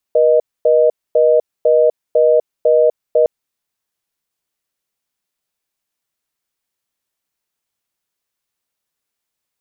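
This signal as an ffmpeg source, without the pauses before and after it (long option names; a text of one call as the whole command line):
ffmpeg -f lavfi -i "aevalsrc='0.282*(sin(2*PI*480*t)+sin(2*PI*620*t))*clip(min(mod(t,0.5),0.25-mod(t,0.5))/0.005,0,1)':duration=3.11:sample_rate=44100" out.wav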